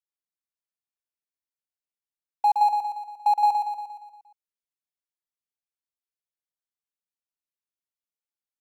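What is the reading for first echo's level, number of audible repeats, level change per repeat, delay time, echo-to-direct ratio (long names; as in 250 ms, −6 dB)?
−5.5 dB, 6, −5.0 dB, 117 ms, −4.0 dB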